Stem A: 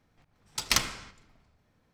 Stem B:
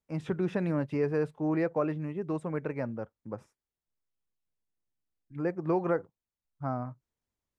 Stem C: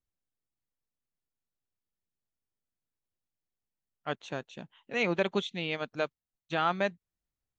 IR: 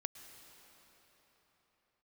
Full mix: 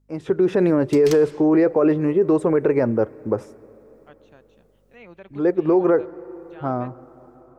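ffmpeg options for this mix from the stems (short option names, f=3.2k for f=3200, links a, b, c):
-filter_complex "[0:a]adelay=350,volume=-6dB[a];[1:a]equalizer=f=160:t=o:w=0.67:g=-6,equalizer=f=400:t=o:w=0.67:g=10,equalizer=f=2.5k:t=o:w=0.67:g=-3,dynaudnorm=f=190:g=5:m=12.5dB,volume=2.5dB,asplit=2[b][c];[c]volume=-15dB[d];[2:a]acrossover=split=2700[e][f];[f]acompressor=threshold=-51dB:ratio=4:attack=1:release=60[g];[e][g]amix=inputs=2:normalize=0,aeval=exprs='val(0)+0.00447*(sin(2*PI*50*n/s)+sin(2*PI*2*50*n/s)/2+sin(2*PI*3*50*n/s)/3+sin(2*PI*4*50*n/s)/4+sin(2*PI*5*50*n/s)/5)':c=same,volume=-16.5dB,asplit=3[h][i][j];[i]volume=-12.5dB[k];[j]apad=whole_len=334671[l];[b][l]sidechaincompress=threshold=-49dB:ratio=5:attack=16:release=668[m];[3:a]atrim=start_sample=2205[n];[d][k]amix=inputs=2:normalize=0[o];[o][n]afir=irnorm=-1:irlink=0[p];[a][m][h][p]amix=inputs=4:normalize=0,alimiter=limit=-9.5dB:level=0:latency=1:release=35"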